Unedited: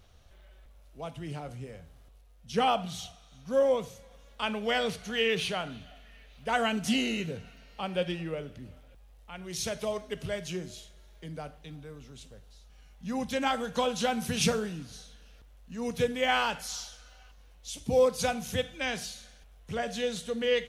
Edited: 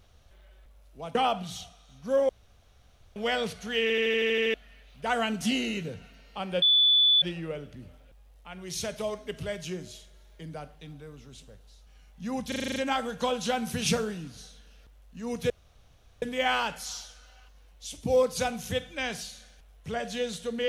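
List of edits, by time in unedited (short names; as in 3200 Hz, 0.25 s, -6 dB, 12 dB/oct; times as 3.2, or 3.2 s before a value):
1.15–2.58 cut
3.72–4.59 room tone
5.25 stutter in place 0.08 s, 9 plays
8.05 add tone 3470 Hz -17.5 dBFS 0.60 s
13.31 stutter 0.04 s, 8 plays
16.05 insert room tone 0.72 s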